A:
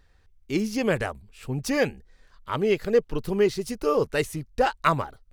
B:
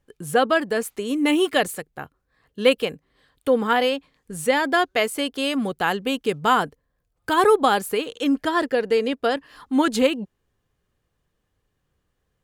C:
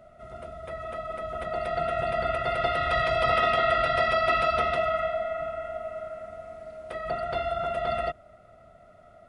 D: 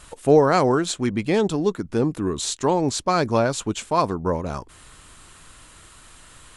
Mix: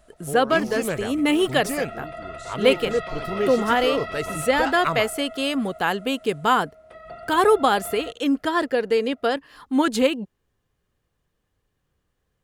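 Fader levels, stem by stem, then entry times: -3.5 dB, -0.5 dB, -9.0 dB, -19.0 dB; 0.00 s, 0.00 s, 0.00 s, 0.00 s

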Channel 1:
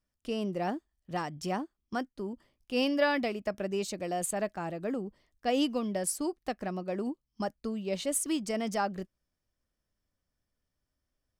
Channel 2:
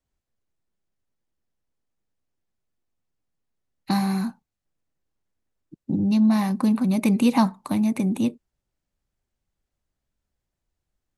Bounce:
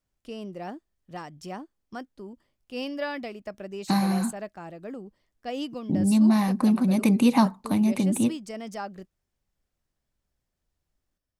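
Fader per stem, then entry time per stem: -4.5 dB, -0.5 dB; 0.00 s, 0.00 s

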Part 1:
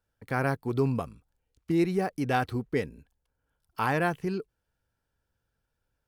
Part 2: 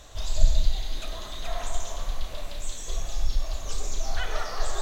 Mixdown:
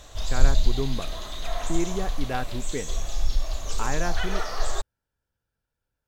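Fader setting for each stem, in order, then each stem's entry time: -3.5 dB, +1.5 dB; 0.00 s, 0.00 s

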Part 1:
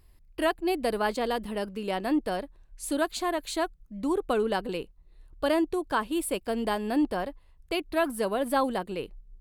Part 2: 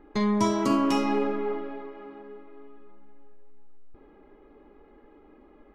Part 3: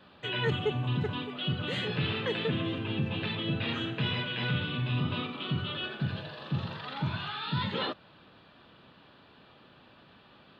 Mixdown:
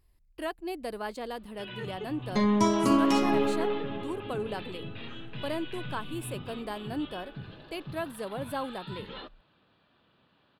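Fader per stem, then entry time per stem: -8.5 dB, 0.0 dB, -10.5 dB; 0.00 s, 2.20 s, 1.35 s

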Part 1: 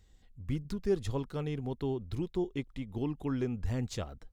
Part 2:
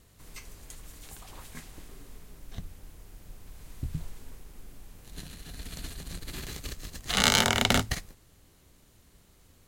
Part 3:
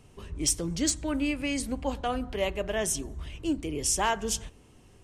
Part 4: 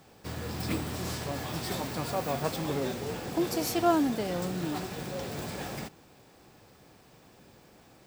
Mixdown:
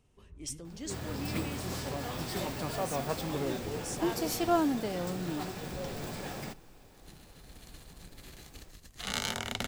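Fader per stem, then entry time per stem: -16.5 dB, -11.5 dB, -14.0 dB, -2.5 dB; 0.00 s, 1.90 s, 0.00 s, 0.65 s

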